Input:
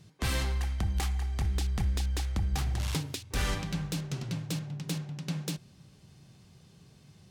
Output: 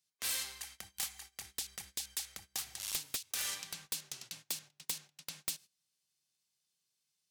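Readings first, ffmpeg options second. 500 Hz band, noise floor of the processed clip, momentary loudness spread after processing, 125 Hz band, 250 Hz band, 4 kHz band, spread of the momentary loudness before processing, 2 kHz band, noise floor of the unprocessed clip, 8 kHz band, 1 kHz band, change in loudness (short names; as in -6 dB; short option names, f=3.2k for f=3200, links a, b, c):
-16.0 dB, -84 dBFS, 10 LU, -32.0 dB, -25.0 dB, -1.5 dB, 5 LU, -6.5 dB, -58 dBFS, +3.5 dB, -12.0 dB, -6.5 dB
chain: -af "aderivative,agate=range=-18dB:threshold=-56dB:ratio=16:detection=peak,aeval=exprs='(mod(25.1*val(0)+1,2)-1)/25.1':c=same,volume=4dB"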